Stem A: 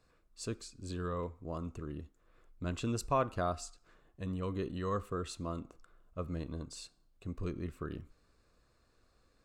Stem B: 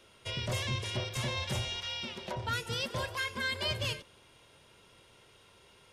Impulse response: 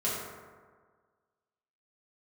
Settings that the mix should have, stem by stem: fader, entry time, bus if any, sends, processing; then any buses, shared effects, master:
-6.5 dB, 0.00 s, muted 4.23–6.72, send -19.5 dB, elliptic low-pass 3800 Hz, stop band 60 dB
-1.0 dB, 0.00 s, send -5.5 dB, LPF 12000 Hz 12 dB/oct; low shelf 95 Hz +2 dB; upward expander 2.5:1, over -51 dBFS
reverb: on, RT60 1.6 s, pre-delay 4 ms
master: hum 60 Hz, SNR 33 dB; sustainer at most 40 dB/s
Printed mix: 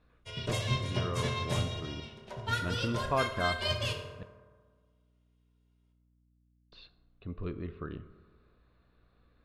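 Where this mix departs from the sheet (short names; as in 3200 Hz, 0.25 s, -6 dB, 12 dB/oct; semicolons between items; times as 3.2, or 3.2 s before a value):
stem A -6.5 dB -> +0.5 dB; master: missing sustainer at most 40 dB/s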